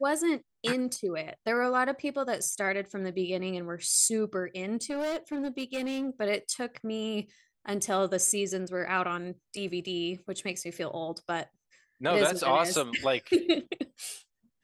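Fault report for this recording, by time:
4.82–6.08 s: clipped -28 dBFS

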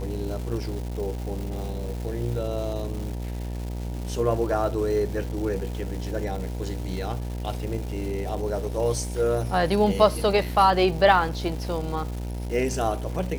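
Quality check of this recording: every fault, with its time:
buzz 60 Hz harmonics 16 -31 dBFS
crackle 480 per s -34 dBFS

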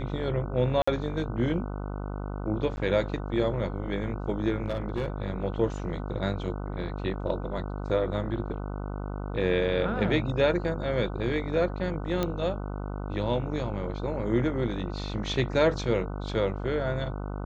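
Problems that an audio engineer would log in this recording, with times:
buzz 50 Hz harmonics 30 -34 dBFS
0.82–0.88 s: dropout 55 ms
2.76–2.77 s: dropout 10 ms
4.64–5.08 s: clipped -24 dBFS
12.23 s: pop -14 dBFS

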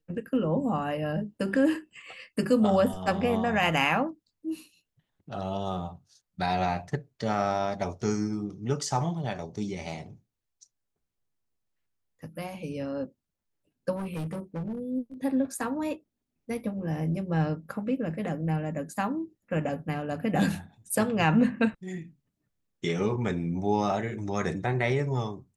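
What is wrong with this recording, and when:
13.95–14.80 s: clipped -30 dBFS

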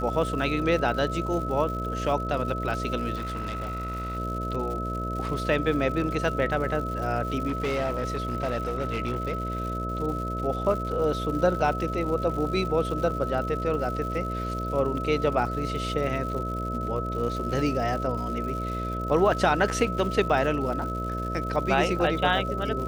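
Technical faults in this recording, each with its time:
buzz 60 Hz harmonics 11 -32 dBFS
crackle 190 per s -35 dBFS
whine 1.3 kHz -32 dBFS
3.15–4.17 s: clipped -28 dBFS
7.47–9.60 s: clipped -23 dBFS

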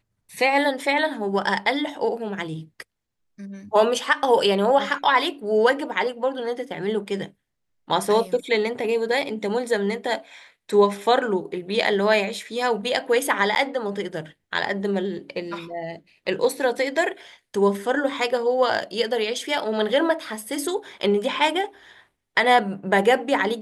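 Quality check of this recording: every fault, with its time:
13.55–13.56 s: dropout 9.8 ms

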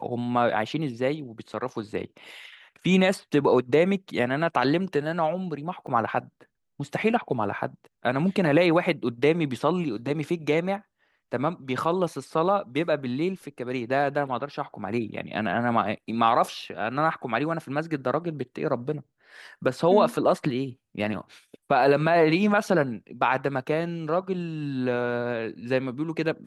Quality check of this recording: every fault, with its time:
5.87 s: dropout 2.1 ms

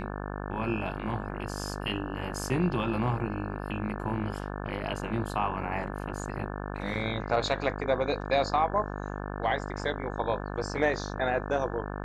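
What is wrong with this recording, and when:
buzz 50 Hz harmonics 35 -36 dBFS

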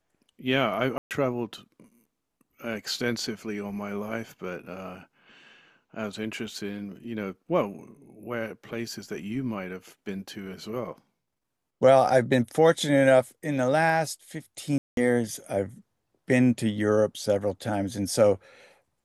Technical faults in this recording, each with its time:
0.98–1.11 s: dropout 128 ms
14.78–14.97 s: dropout 192 ms

